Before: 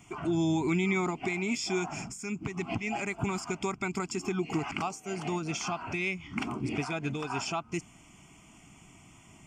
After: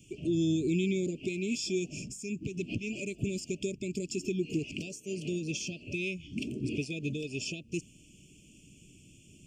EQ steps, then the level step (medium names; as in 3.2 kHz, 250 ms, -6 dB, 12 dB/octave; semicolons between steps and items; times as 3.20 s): Chebyshev band-stop 570–2500 Hz, order 5; 0.0 dB